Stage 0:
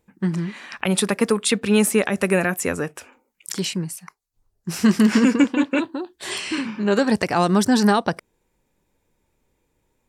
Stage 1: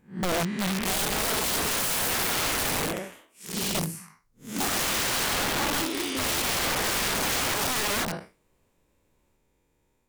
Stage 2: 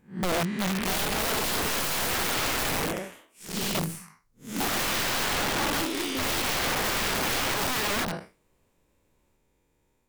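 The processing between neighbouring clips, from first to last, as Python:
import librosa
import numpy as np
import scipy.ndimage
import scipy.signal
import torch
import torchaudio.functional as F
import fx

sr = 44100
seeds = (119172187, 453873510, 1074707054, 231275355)

y1 = fx.spec_blur(x, sr, span_ms=157.0)
y1 = fx.echo_pitch(y1, sr, ms=381, semitones=2, count=2, db_per_echo=-3.0)
y1 = (np.mod(10.0 ** (22.0 / 20.0) * y1 + 1.0, 2.0) - 1.0) / 10.0 ** (22.0 / 20.0)
y2 = fx.tracing_dist(y1, sr, depth_ms=0.059)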